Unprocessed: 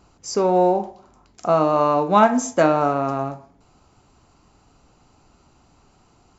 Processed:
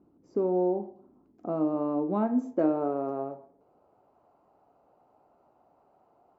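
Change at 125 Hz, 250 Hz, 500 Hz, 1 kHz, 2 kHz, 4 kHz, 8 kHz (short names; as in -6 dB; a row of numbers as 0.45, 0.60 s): -12.0 dB, -5.0 dB, -10.0 dB, -17.0 dB, -23.5 dB, under -30 dB, n/a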